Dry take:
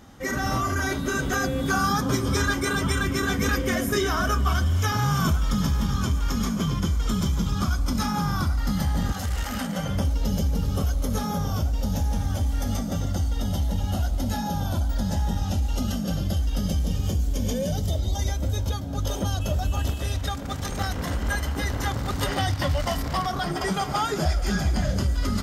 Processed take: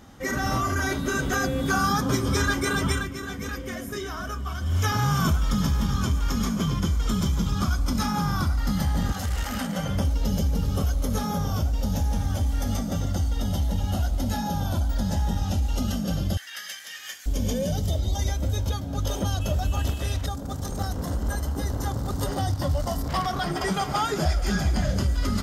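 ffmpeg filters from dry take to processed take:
ffmpeg -i in.wav -filter_complex "[0:a]asettb=1/sr,asplit=3[link_01][link_02][link_03];[link_01]atrim=end=16.374[link_04];[link_02]atrim=start=16.37:end=17.26,asetpts=PTS-STARTPTS,afade=type=in:duration=0.004:curve=qsin,afade=type=out:start_time=0.886:duration=0.004:curve=qsin,highpass=frequency=1800:width_type=q:width=6.5[link_05];[link_03]atrim=start=17.256[link_06];[link_04][link_05]acrossfade=duration=0.004:curve1=hsin:curve2=qsin[link_07];[link_07][link_06]acrossfade=duration=0.004:curve1=qsin:curve2=hsin,asettb=1/sr,asplit=3[link_08][link_09][link_10];[link_08]atrim=end=20.264[link_11];[link_09]atrim=start=20.26:end=23.09,asetpts=PTS-STARTPTS,afade=type=in:duration=0.004:curve=qsin,afade=type=out:start_time=2.826:duration=0.004:curve=qsin,equalizer=frequency=2300:width=0.98:gain=-14.5[link_12];[link_10]atrim=start=23.086[link_13];[link_11][link_12]acrossfade=duration=0.004:curve1=hsin:curve2=qsin[link_14];[link_14][link_13]acrossfade=duration=0.004:curve1=qsin:curve2=hsin,asplit=3[link_15][link_16][link_17];[link_15]atrim=end=3.09,asetpts=PTS-STARTPTS,afade=type=out:start_time=2.92:duration=0.17:silence=0.354813[link_18];[link_16]atrim=start=3.09:end=4.6,asetpts=PTS-STARTPTS,volume=-9dB[link_19];[link_17]atrim=start=4.6,asetpts=PTS-STARTPTS,afade=type=in:duration=0.17:silence=0.354813[link_20];[link_18][link_19][link_20]concat=n=3:v=0:a=1" out.wav

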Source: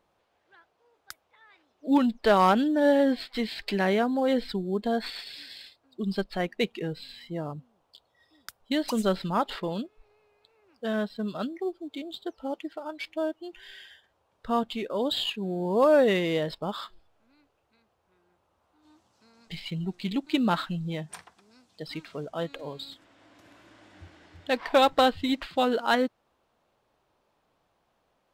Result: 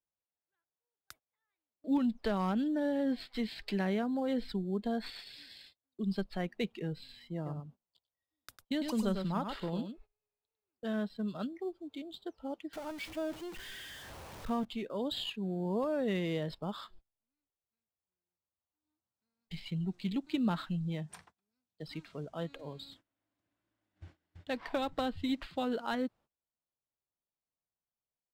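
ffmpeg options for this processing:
ffmpeg -i in.wav -filter_complex "[0:a]asplit=3[link_01][link_02][link_03];[link_01]afade=type=out:start_time=7.45:duration=0.02[link_04];[link_02]aecho=1:1:101:0.447,afade=type=in:start_time=7.45:duration=0.02,afade=type=out:start_time=10.86:duration=0.02[link_05];[link_03]afade=type=in:start_time=10.86:duration=0.02[link_06];[link_04][link_05][link_06]amix=inputs=3:normalize=0,asettb=1/sr,asplit=3[link_07][link_08][link_09];[link_07]atrim=end=12.734[link_10];[link_08]atrim=start=12.73:end=14.65,asetpts=PTS-STARTPTS,afade=type=in:duration=0.004:curve=qsin,afade=type=out:start_time=1.916:duration=0.004:curve=qsin,aeval=exprs='val(0)+0.5*0.0168*sgn(val(0))':channel_layout=same[link_11];[link_09]atrim=start=14.646[link_12];[link_10][link_11]acrossfade=duration=0.004:curve1=hsin:curve2=qsin[link_13];[link_13][link_12]acrossfade=duration=0.004:curve1=qsin:curve2=hsin,agate=range=-24dB:threshold=-50dB:ratio=16:detection=peak,bass=frequency=250:gain=7,treble=frequency=4000:gain=0,acrossover=split=260[link_14][link_15];[link_15]acompressor=threshold=-23dB:ratio=6[link_16];[link_14][link_16]amix=inputs=2:normalize=0,volume=-8.5dB" out.wav

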